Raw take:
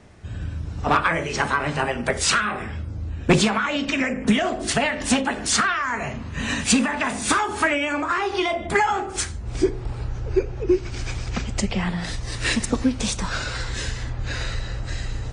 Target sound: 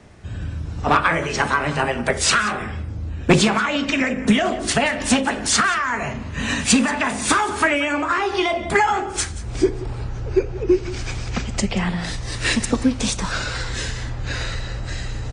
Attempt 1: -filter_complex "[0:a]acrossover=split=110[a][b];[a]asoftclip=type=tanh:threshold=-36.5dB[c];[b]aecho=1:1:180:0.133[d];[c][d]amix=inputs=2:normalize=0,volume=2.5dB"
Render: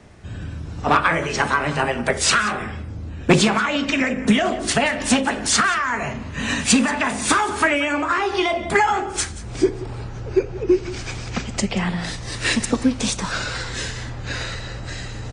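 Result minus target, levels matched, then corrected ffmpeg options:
soft clip: distortion +10 dB
-filter_complex "[0:a]acrossover=split=110[a][b];[a]asoftclip=type=tanh:threshold=-25.5dB[c];[b]aecho=1:1:180:0.133[d];[c][d]amix=inputs=2:normalize=0,volume=2.5dB"

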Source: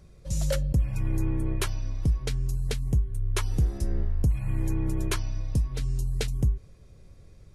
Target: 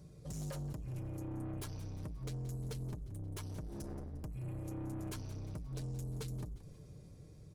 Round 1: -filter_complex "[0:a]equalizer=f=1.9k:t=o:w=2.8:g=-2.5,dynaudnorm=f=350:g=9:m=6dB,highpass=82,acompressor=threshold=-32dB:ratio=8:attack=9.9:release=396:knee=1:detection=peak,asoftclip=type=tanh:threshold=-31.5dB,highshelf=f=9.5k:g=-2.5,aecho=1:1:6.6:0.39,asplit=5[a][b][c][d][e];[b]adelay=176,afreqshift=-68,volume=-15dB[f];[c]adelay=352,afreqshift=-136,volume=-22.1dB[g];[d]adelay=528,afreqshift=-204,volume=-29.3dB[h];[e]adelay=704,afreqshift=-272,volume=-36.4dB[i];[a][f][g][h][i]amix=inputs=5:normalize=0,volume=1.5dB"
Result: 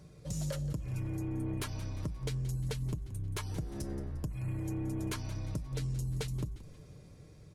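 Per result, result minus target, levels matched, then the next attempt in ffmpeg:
soft clip: distortion -8 dB; 2000 Hz band +3.5 dB
-filter_complex "[0:a]equalizer=f=1.9k:t=o:w=2.8:g=-2.5,dynaudnorm=f=350:g=9:m=6dB,highpass=82,acompressor=threshold=-32dB:ratio=8:attack=9.9:release=396:knee=1:detection=peak,asoftclip=type=tanh:threshold=-42dB,highshelf=f=9.5k:g=-2.5,aecho=1:1:6.6:0.39,asplit=5[a][b][c][d][e];[b]adelay=176,afreqshift=-68,volume=-15dB[f];[c]adelay=352,afreqshift=-136,volume=-22.1dB[g];[d]adelay=528,afreqshift=-204,volume=-29.3dB[h];[e]adelay=704,afreqshift=-272,volume=-36.4dB[i];[a][f][g][h][i]amix=inputs=5:normalize=0,volume=1.5dB"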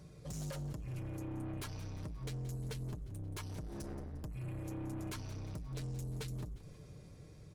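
2000 Hz band +4.5 dB
-filter_complex "[0:a]equalizer=f=1.9k:t=o:w=2.8:g=-10,dynaudnorm=f=350:g=9:m=6dB,highpass=82,acompressor=threshold=-32dB:ratio=8:attack=9.9:release=396:knee=1:detection=peak,asoftclip=type=tanh:threshold=-42dB,highshelf=f=9.5k:g=-2.5,aecho=1:1:6.6:0.39,asplit=5[a][b][c][d][e];[b]adelay=176,afreqshift=-68,volume=-15dB[f];[c]adelay=352,afreqshift=-136,volume=-22.1dB[g];[d]adelay=528,afreqshift=-204,volume=-29.3dB[h];[e]adelay=704,afreqshift=-272,volume=-36.4dB[i];[a][f][g][h][i]amix=inputs=5:normalize=0,volume=1.5dB"

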